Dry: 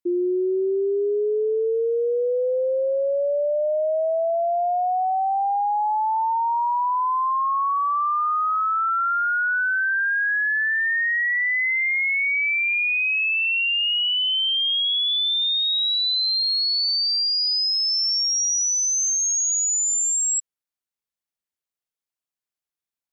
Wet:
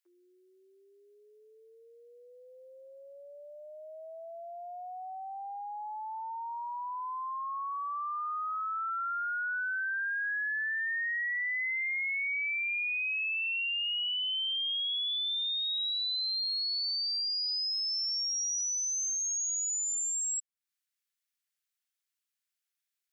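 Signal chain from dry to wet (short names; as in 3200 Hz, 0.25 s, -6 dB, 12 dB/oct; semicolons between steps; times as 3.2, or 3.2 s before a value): HPF 1400 Hz 24 dB/oct; compressor 2.5:1, threshold -43 dBFS, peak gain reduction 14 dB; gain +3.5 dB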